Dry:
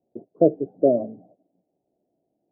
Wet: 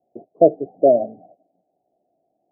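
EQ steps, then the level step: resonant low-pass 740 Hz, resonance Q 4.9; -2.5 dB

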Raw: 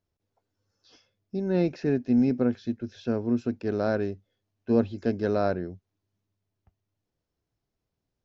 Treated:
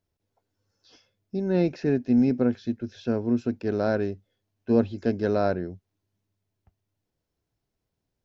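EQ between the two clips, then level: band-stop 1.2 kHz, Q 19; +1.5 dB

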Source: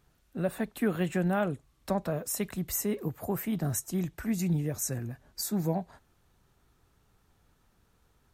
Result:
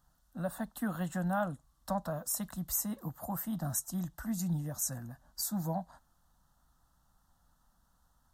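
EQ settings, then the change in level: peaking EQ 100 Hz -9.5 dB 0.89 oct; static phaser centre 980 Hz, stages 4; 0.0 dB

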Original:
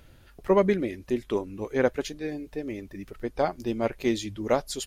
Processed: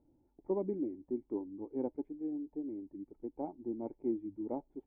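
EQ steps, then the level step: cascade formant filter u; distance through air 480 m; bass shelf 260 Hz -11 dB; +3.0 dB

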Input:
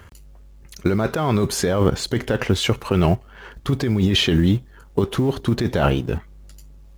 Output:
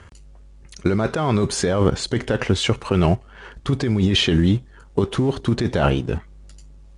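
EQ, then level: steep low-pass 10 kHz 72 dB/octave; 0.0 dB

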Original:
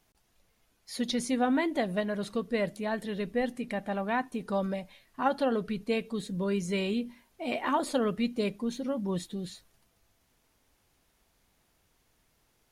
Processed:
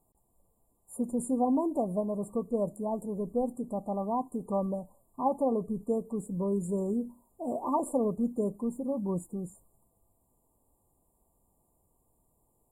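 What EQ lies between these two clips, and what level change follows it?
brick-wall FIR band-stop 1.2–7 kHz; band-stop 1.1 kHz, Q 12; 0.0 dB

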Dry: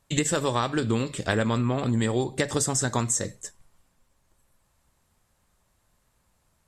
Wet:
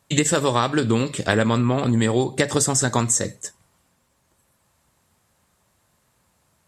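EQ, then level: high-pass 85 Hz; +5.5 dB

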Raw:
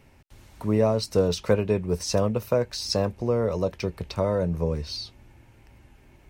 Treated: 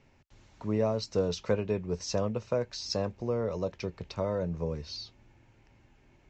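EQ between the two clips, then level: steep low-pass 7.5 kHz 96 dB/octave; peaking EQ 60 Hz -8.5 dB 0.56 oct; -6.5 dB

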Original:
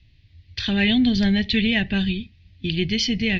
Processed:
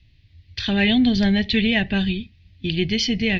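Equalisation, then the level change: dynamic bell 690 Hz, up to +5 dB, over -35 dBFS, Q 0.77; 0.0 dB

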